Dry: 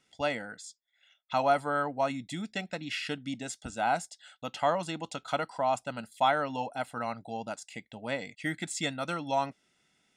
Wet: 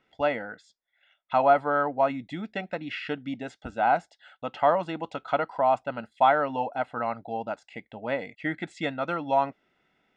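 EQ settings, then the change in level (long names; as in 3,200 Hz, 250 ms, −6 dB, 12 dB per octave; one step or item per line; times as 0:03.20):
bass and treble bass −11 dB, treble −10 dB
head-to-tape spacing loss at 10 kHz 23 dB
low-shelf EQ 89 Hz +10.5 dB
+7.5 dB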